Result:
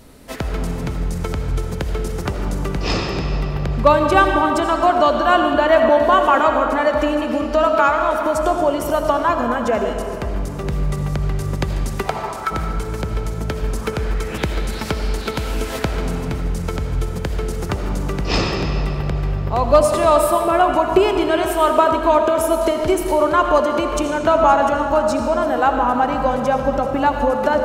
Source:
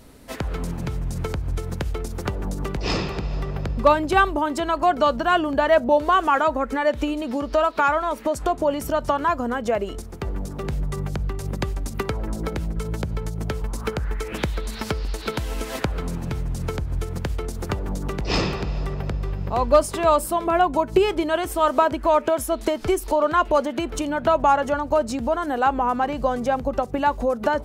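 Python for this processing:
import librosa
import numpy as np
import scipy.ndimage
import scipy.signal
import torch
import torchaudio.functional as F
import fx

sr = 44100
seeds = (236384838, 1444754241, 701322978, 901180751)

y = fx.highpass_res(x, sr, hz=fx.line((12.02, 630.0), (12.5, 1400.0)), q=4.9, at=(12.02, 12.5), fade=0.02)
y = fx.rev_freeverb(y, sr, rt60_s=2.6, hf_ratio=0.75, predelay_ms=40, drr_db=3.5)
y = F.gain(torch.from_numpy(y), 3.0).numpy()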